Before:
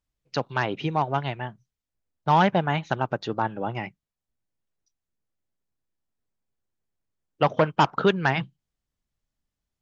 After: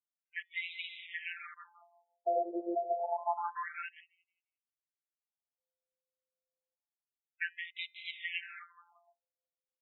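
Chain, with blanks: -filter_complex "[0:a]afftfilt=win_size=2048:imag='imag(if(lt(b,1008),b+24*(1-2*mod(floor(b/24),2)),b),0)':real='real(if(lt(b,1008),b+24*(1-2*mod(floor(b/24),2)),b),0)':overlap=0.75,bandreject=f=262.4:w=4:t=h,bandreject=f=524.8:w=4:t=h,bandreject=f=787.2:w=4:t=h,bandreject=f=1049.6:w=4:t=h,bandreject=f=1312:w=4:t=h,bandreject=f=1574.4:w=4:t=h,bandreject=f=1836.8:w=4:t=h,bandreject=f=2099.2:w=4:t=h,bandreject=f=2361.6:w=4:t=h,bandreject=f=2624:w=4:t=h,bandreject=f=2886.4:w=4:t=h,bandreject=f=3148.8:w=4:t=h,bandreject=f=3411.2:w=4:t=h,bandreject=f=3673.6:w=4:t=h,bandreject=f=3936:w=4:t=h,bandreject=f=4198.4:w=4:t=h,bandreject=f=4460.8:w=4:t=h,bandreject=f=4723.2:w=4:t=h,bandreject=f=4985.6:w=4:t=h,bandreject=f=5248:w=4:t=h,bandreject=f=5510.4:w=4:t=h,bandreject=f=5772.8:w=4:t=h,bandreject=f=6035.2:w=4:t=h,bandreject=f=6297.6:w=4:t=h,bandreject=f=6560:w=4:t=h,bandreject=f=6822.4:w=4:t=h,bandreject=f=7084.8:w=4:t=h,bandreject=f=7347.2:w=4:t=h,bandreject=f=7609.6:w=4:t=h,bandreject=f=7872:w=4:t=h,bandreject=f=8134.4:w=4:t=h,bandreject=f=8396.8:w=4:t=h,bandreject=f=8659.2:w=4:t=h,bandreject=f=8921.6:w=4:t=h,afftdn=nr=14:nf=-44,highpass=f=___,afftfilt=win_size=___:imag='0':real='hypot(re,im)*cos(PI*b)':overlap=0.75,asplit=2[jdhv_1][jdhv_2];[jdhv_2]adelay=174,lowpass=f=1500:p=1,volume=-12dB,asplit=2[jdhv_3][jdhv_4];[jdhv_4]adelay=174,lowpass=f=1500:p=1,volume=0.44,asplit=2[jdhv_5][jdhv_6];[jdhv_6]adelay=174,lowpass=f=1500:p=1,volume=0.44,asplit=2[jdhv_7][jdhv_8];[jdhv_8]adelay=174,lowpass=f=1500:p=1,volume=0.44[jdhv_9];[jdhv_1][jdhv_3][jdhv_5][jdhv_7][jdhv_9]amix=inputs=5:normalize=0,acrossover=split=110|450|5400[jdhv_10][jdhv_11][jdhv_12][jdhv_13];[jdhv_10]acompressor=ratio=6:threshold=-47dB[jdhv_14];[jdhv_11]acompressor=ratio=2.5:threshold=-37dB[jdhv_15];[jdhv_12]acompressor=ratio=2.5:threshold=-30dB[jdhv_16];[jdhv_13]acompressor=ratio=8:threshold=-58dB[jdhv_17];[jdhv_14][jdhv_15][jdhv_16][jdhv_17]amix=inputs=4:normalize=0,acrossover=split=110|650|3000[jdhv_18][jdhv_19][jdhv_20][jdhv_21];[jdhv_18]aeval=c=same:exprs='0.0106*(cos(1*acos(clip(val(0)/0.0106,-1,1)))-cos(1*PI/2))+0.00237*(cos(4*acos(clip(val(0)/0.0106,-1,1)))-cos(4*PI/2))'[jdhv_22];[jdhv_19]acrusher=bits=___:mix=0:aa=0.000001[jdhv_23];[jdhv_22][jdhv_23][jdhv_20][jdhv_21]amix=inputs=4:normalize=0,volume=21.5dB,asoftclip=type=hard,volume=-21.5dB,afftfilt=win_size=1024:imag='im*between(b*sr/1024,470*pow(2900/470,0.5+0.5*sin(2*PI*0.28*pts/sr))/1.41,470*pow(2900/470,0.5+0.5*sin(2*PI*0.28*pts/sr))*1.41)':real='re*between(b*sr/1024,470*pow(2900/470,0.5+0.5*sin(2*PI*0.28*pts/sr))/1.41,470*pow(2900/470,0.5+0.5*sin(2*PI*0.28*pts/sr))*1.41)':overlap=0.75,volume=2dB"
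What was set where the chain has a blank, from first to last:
48, 1024, 6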